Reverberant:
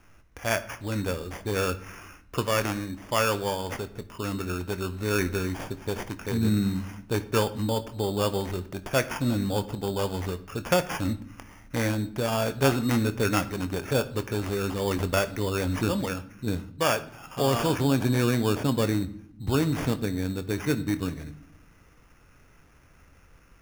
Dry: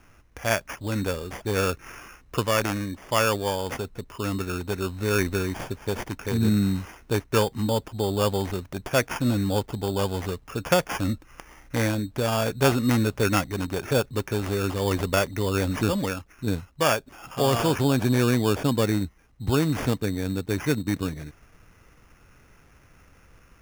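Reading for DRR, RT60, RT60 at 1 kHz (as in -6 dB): 10.5 dB, 0.75 s, 0.65 s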